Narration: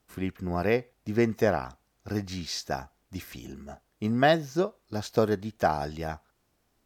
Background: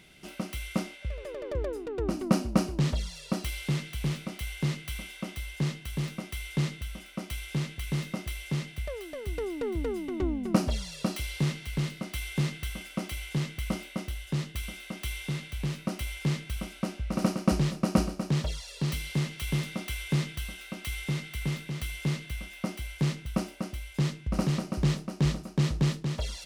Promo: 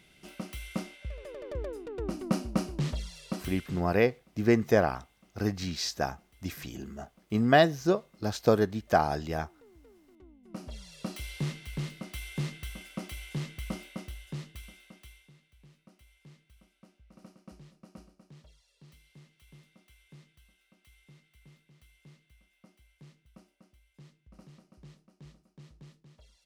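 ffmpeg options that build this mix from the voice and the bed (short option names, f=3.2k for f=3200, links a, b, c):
-filter_complex "[0:a]adelay=3300,volume=1dB[a];[1:a]volume=17dB,afade=t=out:st=3.32:d=0.59:silence=0.0794328,afade=t=in:st=10.42:d=0.86:silence=0.0841395,afade=t=out:st=13.84:d=1.47:silence=0.0841395[b];[a][b]amix=inputs=2:normalize=0"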